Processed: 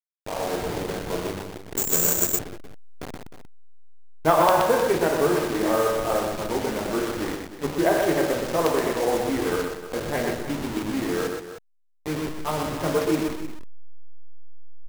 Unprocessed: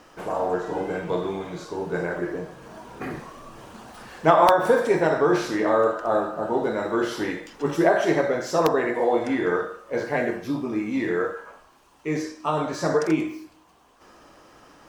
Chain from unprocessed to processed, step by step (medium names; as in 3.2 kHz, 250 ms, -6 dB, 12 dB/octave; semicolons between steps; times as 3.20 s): send-on-delta sampling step -24 dBFS; multi-tap echo 123/308 ms -5/-12 dB; 1.77–2.39 s: careless resampling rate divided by 6×, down none, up zero stuff; trim -2 dB